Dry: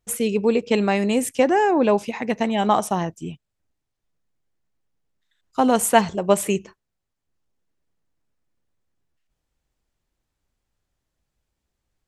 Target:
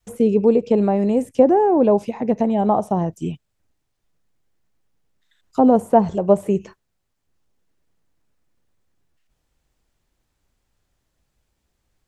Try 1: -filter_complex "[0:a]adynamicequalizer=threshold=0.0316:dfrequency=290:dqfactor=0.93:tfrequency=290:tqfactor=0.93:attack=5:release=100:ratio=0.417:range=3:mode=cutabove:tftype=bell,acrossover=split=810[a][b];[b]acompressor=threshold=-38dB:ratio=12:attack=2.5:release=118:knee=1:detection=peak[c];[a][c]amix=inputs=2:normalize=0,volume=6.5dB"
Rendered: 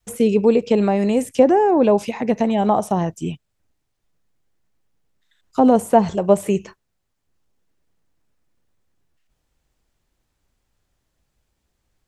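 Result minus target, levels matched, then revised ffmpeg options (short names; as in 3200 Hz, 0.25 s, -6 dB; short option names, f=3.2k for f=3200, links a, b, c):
compressor: peak gain reduction -10.5 dB
-filter_complex "[0:a]adynamicequalizer=threshold=0.0316:dfrequency=290:dqfactor=0.93:tfrequency=290:tqfactor=0.93:attack=5:release=100:ratio=0.417:range=3:mode=cutabove:tftype=bell,acrossover=split=810[a][b];[b]acompressor=threshold=-49.5dB:ratio=12:attack=2.5:release=118:knee=1:detection=peak[c];[a][c]amix=inputs=2:normalize=0,volume=6.5dB"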